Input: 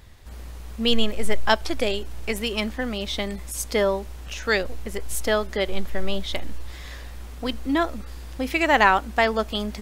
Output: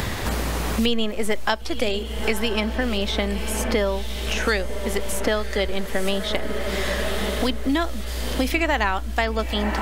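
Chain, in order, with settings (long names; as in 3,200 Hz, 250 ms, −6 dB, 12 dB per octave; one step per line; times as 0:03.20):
on a send: feedback delay with all-pass diffusion 990 ms, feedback 54%, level −14.5 dB
on the sum: multiband upward and downward compressor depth 100%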